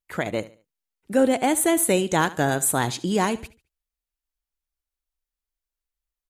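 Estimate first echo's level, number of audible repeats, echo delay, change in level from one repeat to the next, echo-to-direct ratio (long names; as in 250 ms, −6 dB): −18.0 dB, 2, 72 ms, −10.0 dB, −17.5 dB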